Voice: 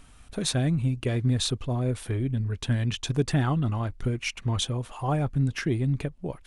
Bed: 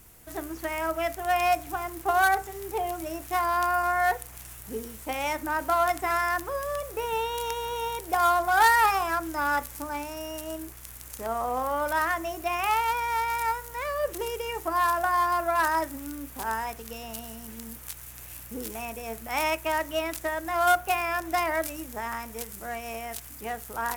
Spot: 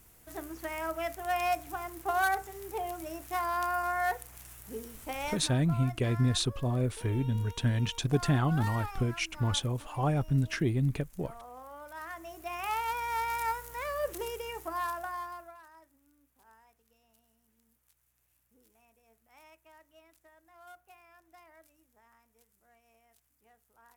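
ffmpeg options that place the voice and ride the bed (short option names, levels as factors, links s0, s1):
-filter_complex "[0:a]adelay=4950,volume=0.75[s0];[1:a]volume=2.66,afade=t=out:st=5.23:d=0.32:silence=0.223872,afade=t=in:st=11.93:d=1.32:silence=0.188365,afade=t=out:st=14.14:d=1.46:silence=0.0473151[s1];[s0][s1]amix=inputs=2:normalize=0"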